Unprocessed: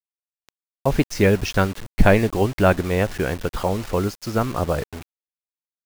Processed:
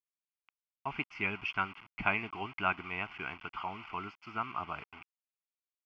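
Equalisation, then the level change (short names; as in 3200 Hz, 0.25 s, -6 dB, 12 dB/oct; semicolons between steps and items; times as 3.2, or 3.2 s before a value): band-pass 2400 Hz, Q 1.3; air absorption 480 m; fixed phaser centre 2600 Hz, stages 8; +3.5 dB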